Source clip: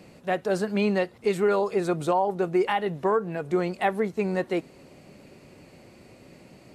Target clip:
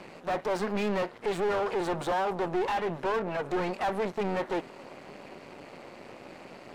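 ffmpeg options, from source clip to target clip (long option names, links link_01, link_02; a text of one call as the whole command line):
ffmpeg -i in.wav -filter_complex "[0:a]aeval=exprs='max(val(0),0)':channel_layout=same,asplit=2[link_01][link_02];[link_02]highpass=frequency=720:poles=1,volume=27dB,asoftclip=type=tanh:threshold=-14dB[link_03];[link_01][link_03]amix=inputs=2:normalize=0,lowpass=frequency=1400:poles=1,volume=-6dB,volume=-5.5dB" out.wav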